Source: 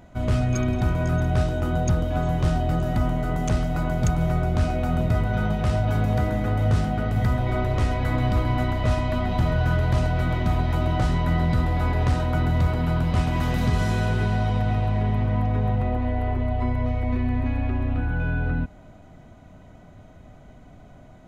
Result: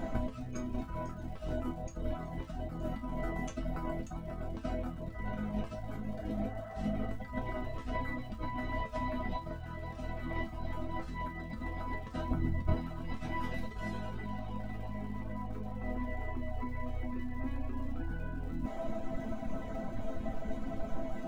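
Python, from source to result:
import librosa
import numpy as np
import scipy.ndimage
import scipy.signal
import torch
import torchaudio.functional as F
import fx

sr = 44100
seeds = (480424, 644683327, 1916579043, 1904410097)

y = fx.over_compress(x, sr, threshold_db=-33.0, ratio=-1.0)
y = fx.spec_repair(y, sr, seeds[0], start_s=6.2, length_s=0.85, low_hz=570.0, high_hz=2100.0, source='both')
y = fx.dereverb_blind(y, sr, rt60_s=1.4)
y = fx.low_shelf(y, sr, hz=400.0, db=12.0, at=(12.31, 12.74))
y = fx.dmg_crackle(y, sr, seeds[1], per_s=190.0, level_db=-47.0)
y = fx.high_shelf(y, sr, hz=2600.0, db=-9.0)
y = fx.resonator_bank(y, sr, root=57, chord='minor', decay_s=0.21)
y = F.gain(torch.from_numpy(y), 18.0).numpy()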